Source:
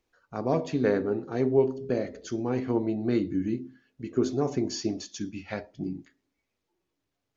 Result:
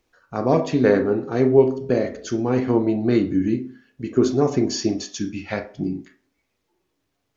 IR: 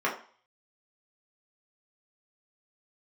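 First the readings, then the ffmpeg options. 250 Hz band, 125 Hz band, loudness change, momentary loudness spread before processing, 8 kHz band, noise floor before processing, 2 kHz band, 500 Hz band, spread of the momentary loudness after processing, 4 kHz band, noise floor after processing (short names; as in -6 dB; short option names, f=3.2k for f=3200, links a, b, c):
+8.0 dB, +7.5 dB, +8.0 dB, 12 LU, n/a, -82 dBFS, +8.5 dB, +8.0 dB, 12 LU, +7.5 dB, -75 dBFS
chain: -filter_complex "[0:a]asplit=2[a][b];[1:a]atrim=start_sample=2205,highshelf=f=3.2k:g=11,adelay=28[c];[b][c]afir=irnorm=-1:irlink=0,volume=-22dB[d];[a][d]amix=inputs=2:normalize=0,volume=7.5dB"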